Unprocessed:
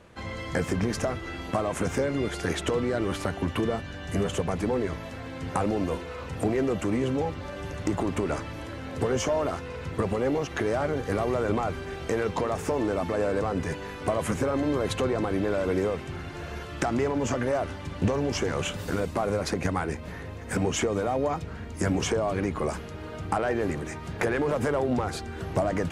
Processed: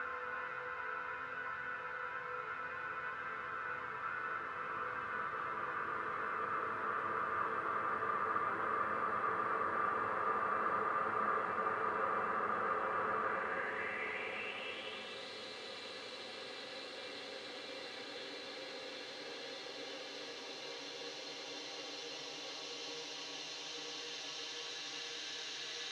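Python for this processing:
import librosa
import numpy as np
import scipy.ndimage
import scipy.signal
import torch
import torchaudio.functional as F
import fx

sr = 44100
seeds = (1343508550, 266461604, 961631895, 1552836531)

y = fx.paulstretch(x, sr, seeds[0], factor=34.0, window_s=0.5, from_s=9.72)
y = fx.filter_sweep_bandpass(y, sr, from_hz=1400.0, to_hz=4000.0, start_s=13.22, end_s=15.3, q=4.7)
y = y * librosa.db_to_amplitude(7.5)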